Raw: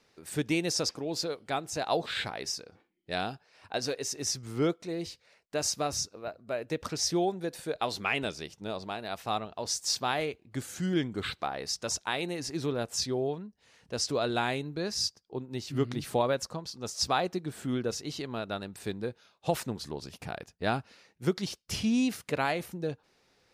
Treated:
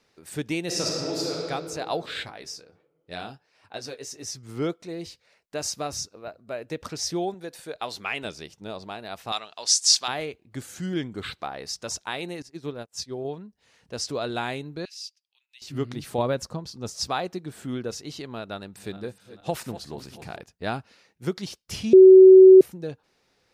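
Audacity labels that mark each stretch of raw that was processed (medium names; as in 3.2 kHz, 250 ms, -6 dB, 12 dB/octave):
0.650000	1.370000	reverb throw, RT60 2.5 s, DRR -3.5 dB
2.230000	4.490000	flange 1.4 Hz, delay 6.5 ms, depth 8.9 ms, regen -35%
7.340000	8.250000	bass shelf 430 Hz -6 dB
9.320000	10.080000	frequency weighting ITU-R 468
12.420000	13.250000	upward expansion 2.5:1, over -47 dBFS
14.850000	15.620000	ladder high-pass 2.3 kHz, resonance 55%
16.180000	17.010000	bass shelf 350 Hz +8 dB
18.530000	20.410000	backward echo that repeats 220 ms, feedback 61%, level -13 dB
21.930000	22.610000	bleep 377 Hz -6 dBFS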